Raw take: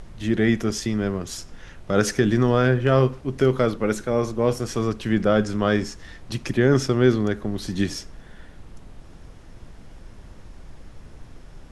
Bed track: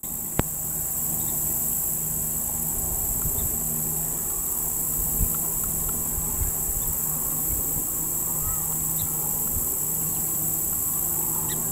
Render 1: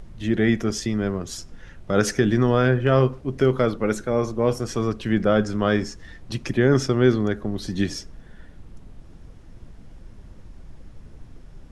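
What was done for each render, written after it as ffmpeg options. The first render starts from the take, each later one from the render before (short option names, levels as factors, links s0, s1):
-af "afftdn=nr=6:nf=-45"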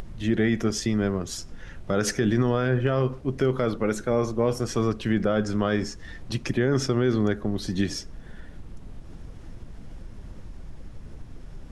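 -af "alimiter=limit=0.224:level=0:latency=1:release=84,acompressor=mode=upward:threshold=0.0251:ratio=2.5"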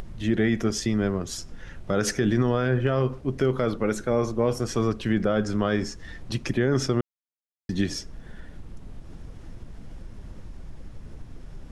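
-filter_complex "[0:a]asplit=3[s0][s1][s2];[s0]atrim=end=7.01,asetpts=PTS-STARTPTS,afade=t=out:st=7.006:d=0.004:c=hsin[s3];[s1]atrim=start=7.01:end=7.69,asetpts=PTS-STARTPTS,volume=0[s4];[s2]atrim=start=7.69,asetpts=PTS-STARTPTS,afade=t=in:d=0.004:c=hsin[s5];[s3][s4][s5]concat=n=3:v=0:a=1"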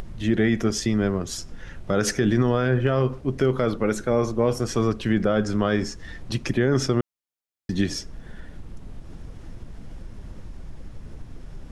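-af "volume=1.26"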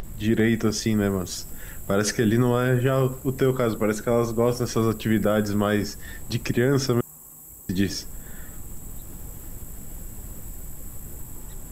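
-filter_complex "[1:a]volume=0.112[s0];[0:a][s0]amix=inputs=2:normalize=0"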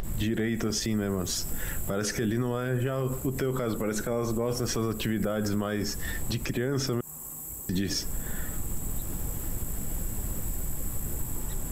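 -filter_complex "[0:a]asplit=2[s0][s1];[s1]acompressor=threshold=0.0355:ratio=6,volume=0.841[s2];[s0][s2]amix=inputs=2:normalize=0,alimiter=limit=0.106:level=0:latency=1:release=76"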